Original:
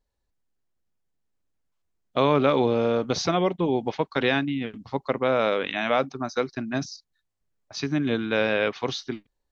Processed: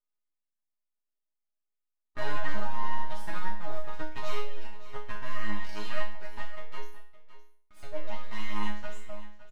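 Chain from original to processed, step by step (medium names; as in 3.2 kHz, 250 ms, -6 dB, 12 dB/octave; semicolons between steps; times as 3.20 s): high-pass 220 Hz 12 dB/octave; peaking EQ 5 kHz -14.5 dB 0.82 oct; full-wave rectifier; chord resonator G#3 fifth, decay 0.47 s; delay 563 ms -15 dB; trim +8.5 dB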